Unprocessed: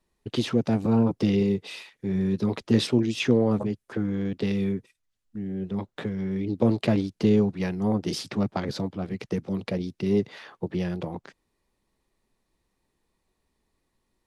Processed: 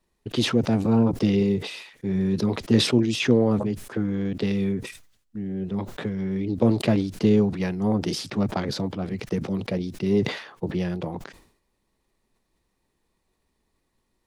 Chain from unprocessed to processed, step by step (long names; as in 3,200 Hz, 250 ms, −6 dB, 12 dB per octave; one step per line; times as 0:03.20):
level that may fall only so fast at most 95 dB per second
level +1.5 dB